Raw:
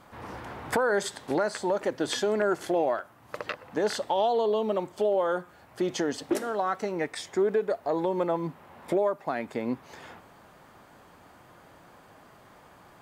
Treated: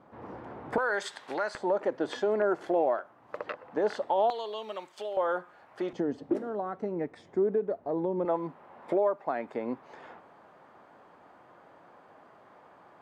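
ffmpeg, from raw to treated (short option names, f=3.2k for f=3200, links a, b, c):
-af "asetnsamples=n=441:p=0,asendcmd='0.78 bandpass f 1800;1.55 bandpass f 620;4.3 bandpass f 3200;5.17 bandpass f 1000;5.93 bandpass f 220;8.25 bandpass f 680',bandpass=f=360:t=q:w=0.59:csg=0"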